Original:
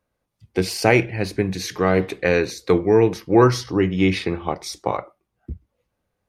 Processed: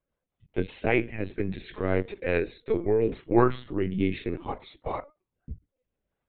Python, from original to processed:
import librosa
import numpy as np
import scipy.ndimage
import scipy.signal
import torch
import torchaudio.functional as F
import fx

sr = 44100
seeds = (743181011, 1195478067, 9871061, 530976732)

y = fx.rotary_switch(x, sr, hz=5.0, then_hz=0.65, switch_at_s=2.4)
y = fx.lpc_vocoder(y, sr, seeds[0], excitation='pitch_kept', order=16)
y = F.gain(torch.from_numpy(y), -6.0).numpy()